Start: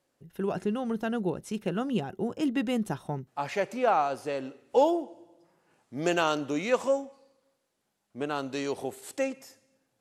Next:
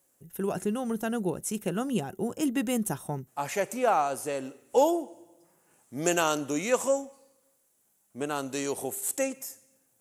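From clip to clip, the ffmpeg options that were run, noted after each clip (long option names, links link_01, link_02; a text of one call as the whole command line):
ffmpeg -i in.wav -af "aexciter=amount=3.5:drive=8.6:freq=6400" out.wav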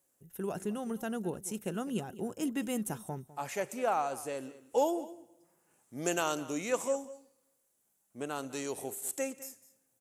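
ffmpeg -i in.wav -af "aecho=1:1:203:0.133,volume=-6dB" out.wav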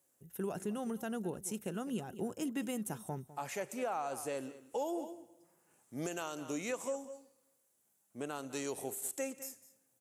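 ffmpeg -i in.wav -af "highpass=frequency=50:width=0.5412,highpass=frequency=50:width=1.3066,alimiter=level_in=4dB:limit=-24dB:level=0:latency=1:release=227,volume=-4dB" out.wav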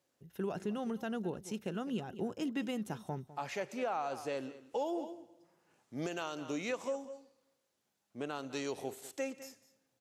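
ffmpeg -i in.wav -af "highshelf=frequency=6500:width_type=q:width=1.5:gain=-12,volume=1dB" out.wav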